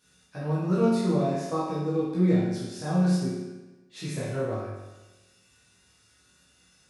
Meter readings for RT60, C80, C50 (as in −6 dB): 1.1 s, 2.5 dB, −0.5 dB